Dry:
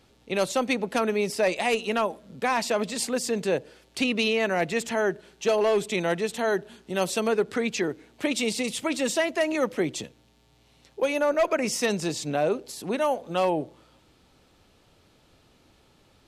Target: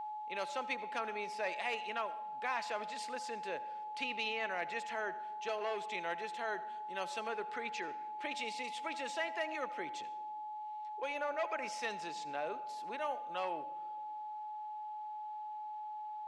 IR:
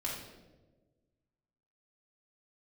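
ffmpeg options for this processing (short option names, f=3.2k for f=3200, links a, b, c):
-filter_complex "[0:a]lowpass=1.8k,aderivative,aeval=exprs='val(0)+0.00562*sin(2*PI*850*n/s)':c=same,asplit=2[a][b];[1:a]atrim=start_sample=2205,adelay=77[c];[b][c]afir=irnorm=-1:irlink=0,volume=-18.5dB[d];[a][d]amix=inputs=2:normalize=0,volume=5.5dB"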